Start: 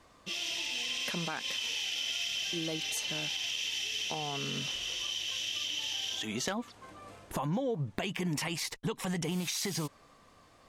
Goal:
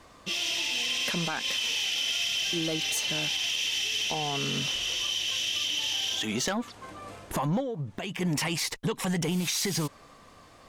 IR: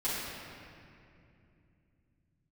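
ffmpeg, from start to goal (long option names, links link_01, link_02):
-filter_complex "[0:a]asettb=1/sr,asplit=3[link_01][link_02][link_03];[link_01]atrim=end=7.604[link_04];[link_02]atrim=start=7.6:end=8.21,asetpts=PTS-STARTPTS,afade=type=in:duration=0.004:curve=qsin,afade=type=out:start_time=0.606:duration=0.004:curve=qsin,acompressor=threshold=-37dB:ratio=6[link_05];[link_03]atrim=start=8.206[link_06];[link_04][link_05]acrossfade=duration=0.004:curve1=hsin:curve2=qsin[link_07];[link_07][link_06]acrossfade=duration=0.004:curve1=qsin:curve2=hsin,asoftclip=type=tanh:threshold=-28dB,volume=7dB"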